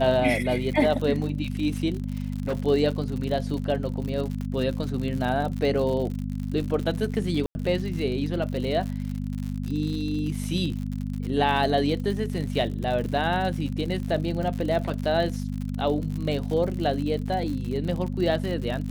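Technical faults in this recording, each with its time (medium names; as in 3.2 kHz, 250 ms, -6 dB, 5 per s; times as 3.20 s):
crackle 80 per s -31 dBFS
hum 50 Hz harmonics 5 -30 dBFS
2.00–2.56 s: clipped -22.5 dBFS
4.41 s: pop -24 dBFS
7.46–7.55 s: dropout 90 ms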